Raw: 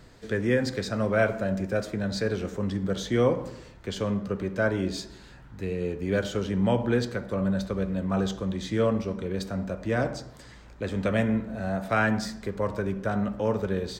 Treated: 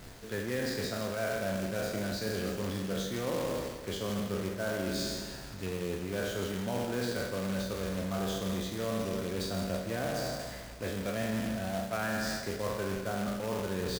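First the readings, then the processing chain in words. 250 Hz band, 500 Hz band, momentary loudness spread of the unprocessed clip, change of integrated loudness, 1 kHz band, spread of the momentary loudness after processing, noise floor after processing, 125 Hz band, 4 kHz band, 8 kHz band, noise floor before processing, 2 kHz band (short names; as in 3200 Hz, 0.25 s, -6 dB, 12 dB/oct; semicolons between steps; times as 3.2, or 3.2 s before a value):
-7.0 dB, -6.0 dB, 8 LU, -6.5 dB, -5.0 dB, 4 LU, -44 dBFS, -7.5 dB, 0.0 dB, +3.0 dB, -49 dBFS, -5.5 dB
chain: spectral trails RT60 1.02 s; bell 690 Hz +4.5 dB 0.25 oct; de-hum 157.4 Hz, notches 4; reverse; compressor 6:1, threshold -32 dBFS, peak gain reduction 16 dB; reverse; companded quantiser 4-bit; on a send: feedback echo 0.162 s, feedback 55%, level -11.5 dB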